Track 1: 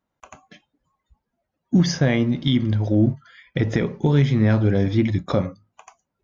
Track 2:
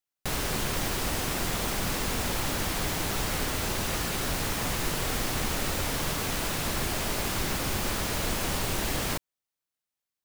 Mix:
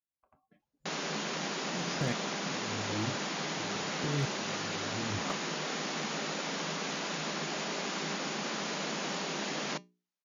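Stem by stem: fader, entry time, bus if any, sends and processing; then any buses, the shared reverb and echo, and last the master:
−1.0 dB, 0.00 s, no send, low-pass that shuts in the quiet parts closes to 1,100 Hz, open at −15.5 dBFS; downward compressor 3 to 1, threshold −31 dBFS, peak gain reduction 13.5 dB; tremolo with a ramp in dB swelling 0.94 Hz, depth 31 dB
0.0 dB, 0.60 s, no send, mains-hum notches 60/120/180/240/300/360/420 Hz; brick-wall band-pass 150–7,100 Hz; tuned comb filter 200 Hz, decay 0.19 s, harmonics all, mix 40%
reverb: not used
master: gain into a clipping stage and back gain 23 dB

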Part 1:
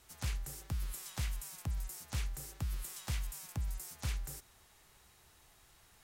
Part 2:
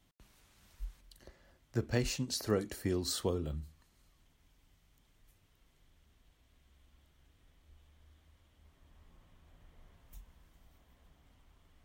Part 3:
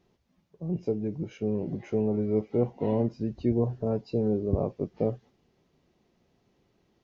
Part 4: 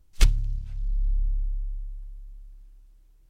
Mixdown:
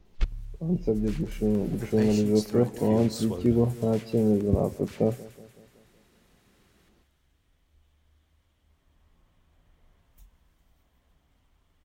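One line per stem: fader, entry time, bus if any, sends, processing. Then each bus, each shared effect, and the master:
+2.5 dB, 0.85 s, no send, echo send −8.5 dB, high-pass filter 1,300 Hz; high-shelf EQ 3,300 Hz −11 dB; pitch vibrato 0.36 Hz 20 cents
−2.0 dB, 0.05 s, no send, no echo send, no processing
+2.5 dB, 0.00 s, no send, echo send −20.5 dB, parametric band 200 Hz +3.5 dB 0.38 octaves
+0.5 dB, 0.00 s, no send, no echo send, low-pass filter 5,000 Hz 12 dB per octave; high-shelf EQ 3,200 Hz −12 dB; square-wave tremolo 3.1 Hz, depth 65%, duty 75%; automatic ducking −12 dB, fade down 0.35 s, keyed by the third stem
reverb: not used
echo: repeating echo 187 ms, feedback 54%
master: no processing

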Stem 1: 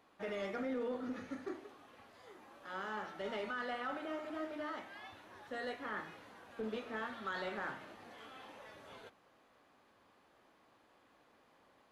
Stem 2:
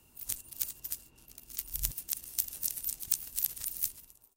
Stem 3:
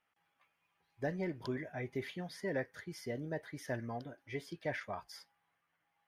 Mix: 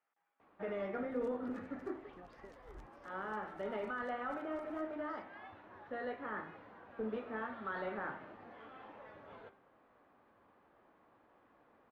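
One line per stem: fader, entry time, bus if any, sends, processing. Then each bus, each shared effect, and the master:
+1.5 dB, 0.40 s, no bus, no send, hum removal 131.9 Hz, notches 30
−2.5 dB, 0.95 s, bus A, no send, no processing
−2.5 dB, 0.00 s, bus A, no send, high-pass filter 320 Hz; downward compressor, threshold −49 dBFS, peak gain reduction 15.5 dB
bus A: 0.0 dB, downward compressor 4 to 1, threshold −46 dBFS, peak gain reduction 17.5 dB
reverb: not used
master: low-pass filter 1,700 Hz 12 dB per octave

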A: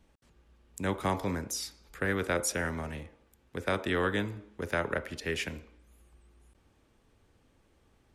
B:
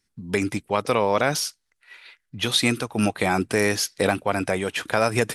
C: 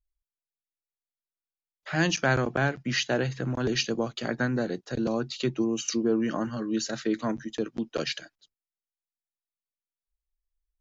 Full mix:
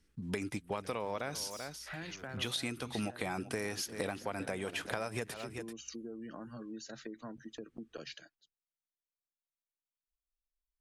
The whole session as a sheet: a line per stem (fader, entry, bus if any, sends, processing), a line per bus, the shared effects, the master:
−8.0 dB, 0.00 s, bus A, no send, no echo send, flat-topped bell 750 Hz −13 dB 1.1 octaves; soft clipping −34.5 dBFS, distortion −7 dB
−5.0 dB, 0.00 s, no bus, no send, echo send −17 dB, no processing
−9.5 dB, 0.00 s, bus A, no send, no echo send, gate on every frequency bin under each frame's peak −30 dB strong
bus A: 0.0 dB, downward compressor 6 to 1, threshold −42 dBFS, peak gain reduction 13 dB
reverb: not used
echo: single-tap delay 387 ms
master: downward compressor 6 to 1, threshold −34 dBFS, peak gain reduction 13.5 dB

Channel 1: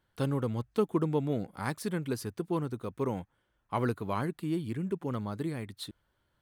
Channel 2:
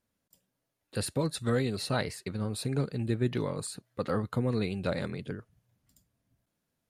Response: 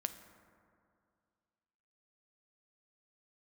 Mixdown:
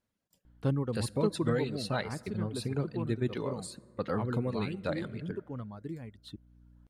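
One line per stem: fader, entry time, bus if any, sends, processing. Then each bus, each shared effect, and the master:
+1.5 dB, 0.45 s, no send, reverb reduction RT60 1 s; spectral tilt −2 dB per octave; mains hum 60 Hz, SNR 28 dB; automatic ducking −10 dB, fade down 1.85 s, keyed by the second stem
−4.5 dB, 0.00 s, send −6 dB, reverb reduction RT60 1.3 s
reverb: on, RT60 2.3 s, pre-delay 5 ms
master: high-shelf EQ 9,200 Hz −9.5 dB

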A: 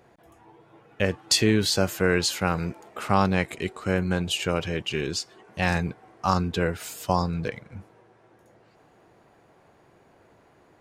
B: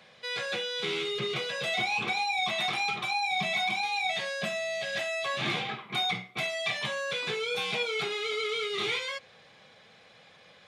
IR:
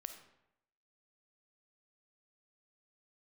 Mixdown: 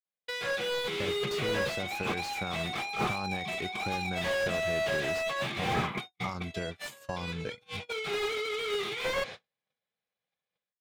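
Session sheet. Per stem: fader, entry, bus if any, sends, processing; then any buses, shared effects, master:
−16.5 dB, 0.00 s, send −20.5 dB, downward expander −45 dBFS; brickwall limiter −13 dBFS, peak gain reduction 6.5 dB; downward compressor 6 to 1, threshold −28 dBFS, peak gain reduction 9.5 dB
0:05.76 −4 dB → 0:06.47 −16.5 dB → 0:07.40 −16.5 dB → 0:08.12 −4.5 dB, 0.05 s, no send, compressor whose output falls as the input rises −36 dBFS, ratio −0.5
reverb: on, RT60 0.80 s, pre-delay 10 ms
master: noise gate −48 dBFS, range −49 dB; automatic gain control gain up to 11.5 dB; slew-rate limiting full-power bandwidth 54 Hz

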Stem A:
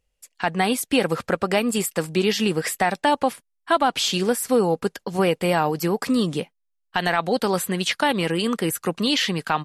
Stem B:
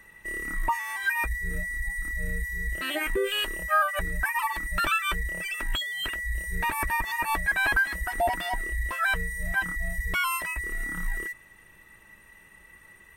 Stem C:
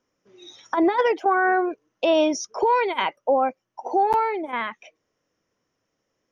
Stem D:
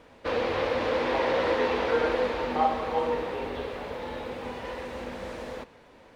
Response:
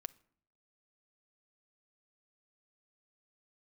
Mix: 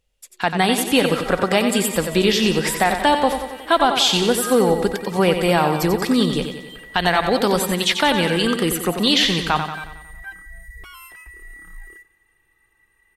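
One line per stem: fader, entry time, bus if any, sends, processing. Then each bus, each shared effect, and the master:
+0.5 dB, 0.00 s, send −6.5 dB, echo send −5.5 dB, parametric band 3,600 Hz +6 dB 0.36 octaves
−15.5 dB, 0.70 s, send −3 dB, echo send −15 dB, comb filter 2.5 ms, depth 57%
−16.5 dB, 0.00 s, no send, no echo send, noise gate with hold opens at −48 dBFS
−15.0 dB, 1.30 s, no send, no echo send, no processing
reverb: on, RT60 0.60 s, pre-delay 6 ms
echo: repeating echo 91 ms, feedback 55%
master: no processing

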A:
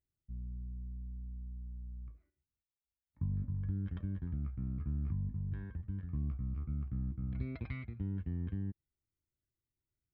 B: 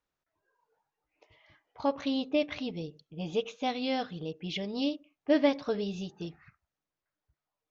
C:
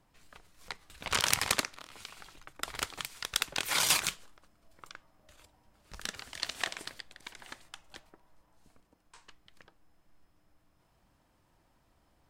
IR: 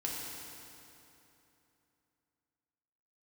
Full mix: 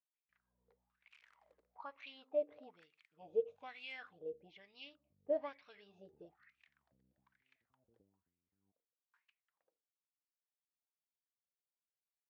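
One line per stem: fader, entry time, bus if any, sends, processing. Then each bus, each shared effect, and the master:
−7.0 dB, 0.00 s, bus A, no send, Butterworth low-pass 760 Hz
−3.0 dB, 0.00 s, no bus, no send, no processing
−11.5 dB, 0.00 s, bus A, no send, automatic ducking −11 dB, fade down 0.50 s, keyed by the second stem
bus A: 0.0 dB, downward compressor 5 to 1, threshold −50 dBFS, peak gain reduction 11.5 dB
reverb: not used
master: noise gate with hold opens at −56 dBFS; LFO wah 1.1 Hz 450–2,500 Hz, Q 6

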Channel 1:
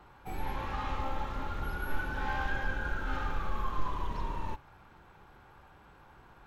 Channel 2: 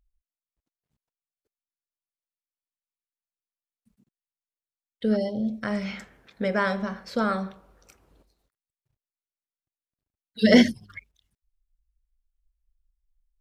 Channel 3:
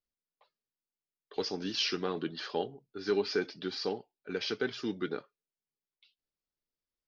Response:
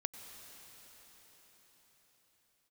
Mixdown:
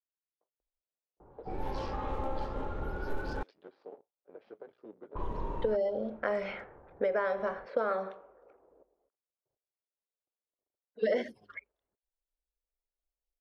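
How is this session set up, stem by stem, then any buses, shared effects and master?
−7.0 dB, 1.20 s, muted 0:03.43–0:05.15, no send, tilt shelving filter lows +5.5 dB, about 1,500 Hz
−1.0 dB, 0.60 s, no send, three-way crossover with the lows and the highs turned down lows −20 dB, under 360 Hz, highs −14 dB, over 2,700 Hz
−15.5 dB, 0.00 s, no send, sub-harmonics by changed cycles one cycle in 3, muted; high-pass filter 430 Hz 6 dB per octave; brickwall limiter −26.5 dBFS, peak gain reduction 6.5 dB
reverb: not used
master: low-pass that shuts in the quiet parts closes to 800 Hz, open at −30.5 dBFS; parametric band 480 Hz +9.5 dB 1.3 octaves; downward compressor 12 to 1, threshold −26 dBFS, peak gain reduction 16.5 dB

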